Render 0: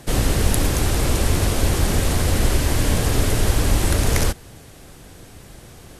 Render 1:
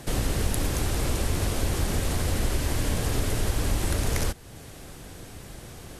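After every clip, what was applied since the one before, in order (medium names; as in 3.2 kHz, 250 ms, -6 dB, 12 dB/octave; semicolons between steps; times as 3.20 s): compression 1.5:1, threshold -35 dBFS, peak gain reduction 9 dB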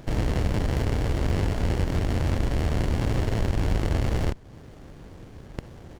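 rattle on loud lows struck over -34 dBFS, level -16 dBFS; resampled via 16 kHz; sliding maximum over 33 samples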